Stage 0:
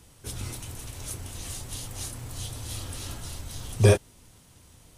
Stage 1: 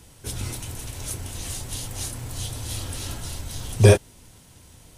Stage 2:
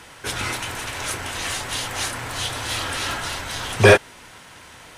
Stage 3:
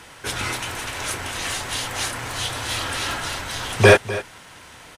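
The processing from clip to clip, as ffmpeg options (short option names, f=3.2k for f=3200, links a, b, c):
-af "bandreject=f=1.2k:w=15,volume=4.5dB"
-filter_complex "[0:a]equalizer=f=1.6k:w=0.8:g=8.5,asplit=2[a][b];[b]highpass=f=720:p=1,volume=18dB,asoftclip=type=tanh:threshold=0dB[c];[a][c]amix=inputs=2:normalize=0,lowpass=f=2.7k:p=1,volume=-6dB,volume=-1dB"
-af "aecho=1:1:250:0.168"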